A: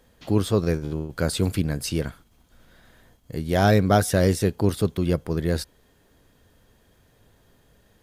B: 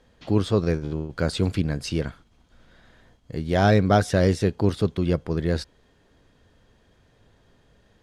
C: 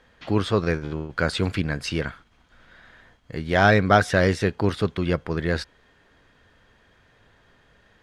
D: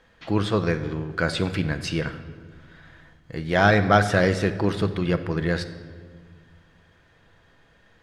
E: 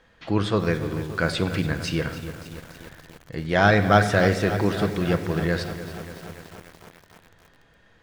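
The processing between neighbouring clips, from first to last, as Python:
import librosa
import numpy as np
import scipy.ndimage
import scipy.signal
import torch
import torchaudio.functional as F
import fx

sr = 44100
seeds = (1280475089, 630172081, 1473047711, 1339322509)

y1 = scipy.signal.sosfilt(scipy.signal.butter(2, 5800.0, 'lowpass', fs=sr, output='sos'), x)
y2 = fx.peak_eq(y1, sr, hz=1700.0, db=10.5, octaves=2.1)
y2 = y2 * librosa.db_to_amplitude(-2.0)
y3 = fx.room_shoebox(y2, sr, seeds[0], volume_m3=2000.0, walls='mixed', distance_m=0.7)
y3 = y3 * librosa.db_to_amplitude(-1.0)
y4 = fx.echo_crushed(y3, sr, ms=289, feedback_pct=80, bits=6, wet_db=-13.0)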